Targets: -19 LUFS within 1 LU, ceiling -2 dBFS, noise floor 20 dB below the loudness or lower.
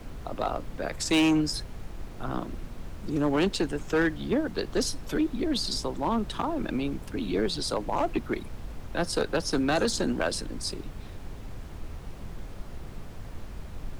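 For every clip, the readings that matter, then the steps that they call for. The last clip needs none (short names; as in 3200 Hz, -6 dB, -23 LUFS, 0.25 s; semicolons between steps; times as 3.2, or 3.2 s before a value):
clipped 1.1%; flat tops at -19.0 dBFS; noise floor -42 dBFS; noise floor target -49 dBFS; loudness -29.0 LUFS; peak -19.0 dBFS; loudness target -19.0 LUFS
-> clip repair -19 dBFS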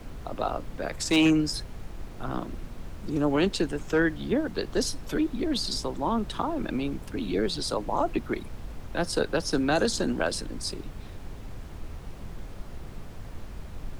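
clipped 0.0%; noise floor -42 dBFS; noise floor target -48 dBFS
-> noise print and reduce 6 dB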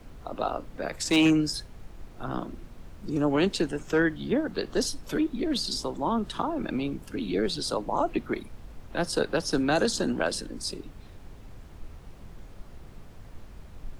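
noise floor -47 dBFS; noise floor target -48 dBFS
-> noise print and reduce 6 dB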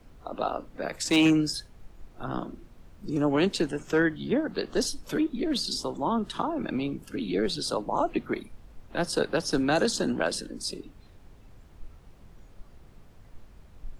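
noise floor -53 dBFS; loudness -28.0 LUFS; peak -12.0 dBFS; loudness target -19.0 LUFS
-> gain +9 dB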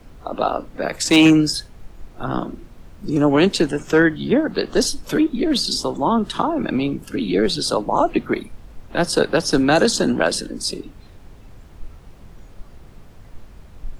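loudness -19.0 LUFS; peak -3.0 dBFS; noise floor -44 dBFS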